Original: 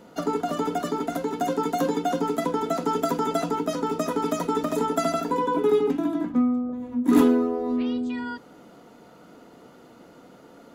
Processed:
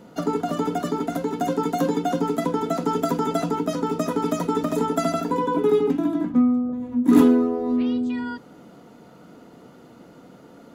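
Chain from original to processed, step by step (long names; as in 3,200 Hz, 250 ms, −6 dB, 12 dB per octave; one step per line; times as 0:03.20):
parametric band 140 Hz +6 dB 2 octaves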